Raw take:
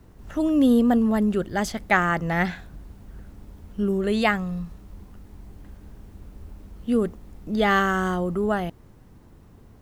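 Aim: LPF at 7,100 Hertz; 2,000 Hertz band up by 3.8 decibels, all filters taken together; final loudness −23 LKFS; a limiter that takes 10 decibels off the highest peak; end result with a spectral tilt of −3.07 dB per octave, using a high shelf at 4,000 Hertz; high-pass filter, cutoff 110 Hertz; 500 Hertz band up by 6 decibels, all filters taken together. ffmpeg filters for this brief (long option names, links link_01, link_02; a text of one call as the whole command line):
ffmpeg -i in.wav -af "highpass=110,lowpass=7100,equalizer=frequency=500:width_type=o:gain=7.5,equalizer=frequency=2000:width_type=o:gain=5,highshelf=frequency=4000:gain=-4.5,volume=-1dB,alimiter=limit=-11.5dB:level=0:latency=1" out.wav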